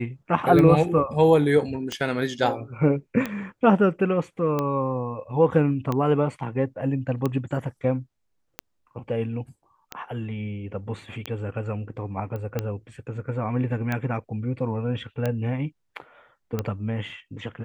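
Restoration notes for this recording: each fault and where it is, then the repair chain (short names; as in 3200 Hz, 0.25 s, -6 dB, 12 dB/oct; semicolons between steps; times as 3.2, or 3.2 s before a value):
tick 45 rpm -13 dBFS
12.36 pop -23 dBFS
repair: de-click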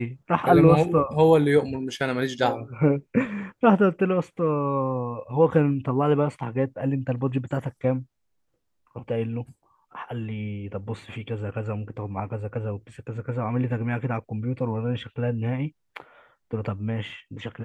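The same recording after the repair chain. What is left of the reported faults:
none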